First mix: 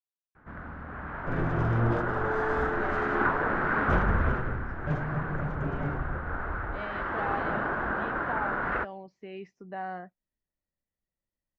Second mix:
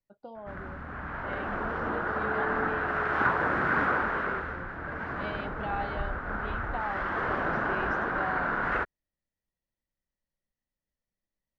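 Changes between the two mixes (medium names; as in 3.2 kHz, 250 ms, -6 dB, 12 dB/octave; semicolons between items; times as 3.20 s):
speech: entry -1.55 s; second sound: add ladder band-pass 520 Hz, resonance 60%; master: remove low-pass 2.3 kHz 6 dB/octave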